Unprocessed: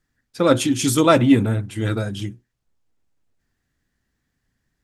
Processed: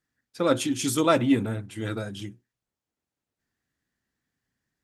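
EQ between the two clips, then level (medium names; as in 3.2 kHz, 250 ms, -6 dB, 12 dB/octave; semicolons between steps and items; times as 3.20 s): high-pass 150 Hz 6 dB/octave; -6.0 dB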